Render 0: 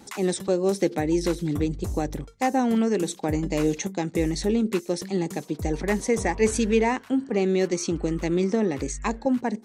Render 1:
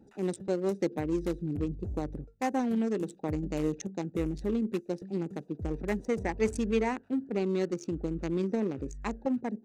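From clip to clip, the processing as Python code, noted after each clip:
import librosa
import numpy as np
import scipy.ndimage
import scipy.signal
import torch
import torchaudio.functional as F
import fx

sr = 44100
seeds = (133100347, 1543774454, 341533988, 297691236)

y = fx.wiener(x, sr, points=41)
y = F.gain(torch.from_numpy(y), -6.0).numpy()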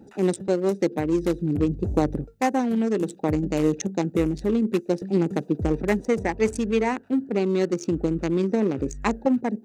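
y = fx.low_shelf(x, sr, hz=60.0, db=-10.0)
y = fx.rider(y, sr, range_db=10, speed_s=0.5)
y = F.gain(torch.from_numpy(y), 8.5).numpy()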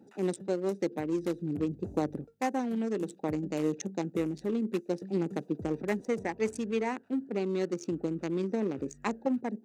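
y = scipy.signal.sosfilt(scipy.signal.butter(2, 140.0, 'highpass', fs=sr, output='sos'), x)
y = F.gain(torch.from_numpy(y), -8.0).numpy()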